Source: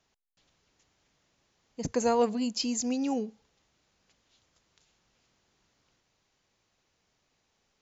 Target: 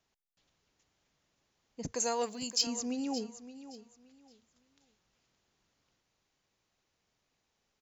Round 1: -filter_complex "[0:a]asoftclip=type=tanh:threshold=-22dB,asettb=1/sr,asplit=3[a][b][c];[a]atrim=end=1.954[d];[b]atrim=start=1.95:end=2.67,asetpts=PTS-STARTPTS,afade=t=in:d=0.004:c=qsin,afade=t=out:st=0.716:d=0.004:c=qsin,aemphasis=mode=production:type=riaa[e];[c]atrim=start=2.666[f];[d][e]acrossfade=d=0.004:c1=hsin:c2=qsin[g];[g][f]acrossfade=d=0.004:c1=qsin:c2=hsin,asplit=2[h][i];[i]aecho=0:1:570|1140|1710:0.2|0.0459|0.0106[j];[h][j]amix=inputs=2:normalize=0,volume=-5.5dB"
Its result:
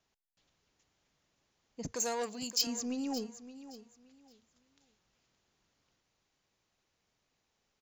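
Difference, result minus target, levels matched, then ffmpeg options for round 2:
soft clip: distortion +17 dB
-filter_complex "[0:a]asoftclip=type=tanh:threshold=-11dB,asettb=1/sr,asplit=3[a][b][c];[a]atrim=end=1.954[d];[b]atrim=start=1.95:end=2.67,asetpts=PTS-STARTPTS,afade=t=in:d=0.004:c=qsin,afade=t=out:st=0.716:d=0.004:c=qsin,aemphasis=mode=production:type=riaa[e];[c]atrim=start=2.666[f];[d][e]acrossfade=d=0.004:c1=hsin:c2=qsin[g];[g][f]acrossfade=d=0.004:c1=qsin:c2=hsin,asplit=2[h][i];[i]aecho=0:1:570|1140|1710:0.2|0.0459|0.0106[j];[h][j]amix=inputs=2:normalize=0,volume=-5.5dB"

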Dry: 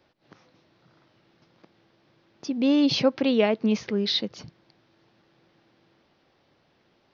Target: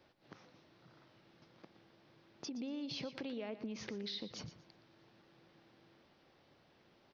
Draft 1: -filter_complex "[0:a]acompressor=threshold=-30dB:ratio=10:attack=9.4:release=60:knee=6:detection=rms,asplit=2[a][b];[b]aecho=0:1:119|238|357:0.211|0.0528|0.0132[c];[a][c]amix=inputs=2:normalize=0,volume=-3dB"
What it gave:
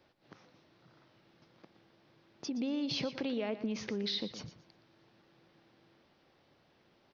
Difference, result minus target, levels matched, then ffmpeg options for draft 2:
compressor: peak gain reduction -7.5 dB
-filter_complex "[0:a]acompressor=threshold=-38.5dB:ratio=10:attack=9.4:release=60:knee=6:detection=rms,asplit=2[a][b];[b]aecho=0:1:119|238|357:0.211|0.0528|0.0132[c];[a][c]amix=inputs=2:normalize=0,volume=-3dB"

